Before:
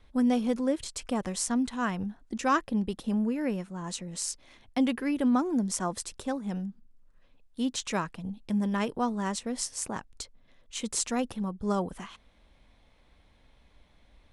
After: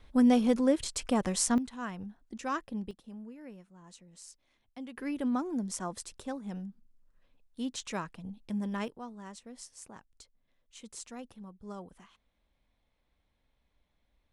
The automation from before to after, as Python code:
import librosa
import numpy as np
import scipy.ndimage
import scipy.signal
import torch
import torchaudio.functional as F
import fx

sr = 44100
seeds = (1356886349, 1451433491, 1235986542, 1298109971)

y = fx.gain(x, sr, db=fx.steps((0.0, 2.0), (1.58, -8.5), (2.91, -17.5), (4.97, -6.0), (8.88, -15.0)))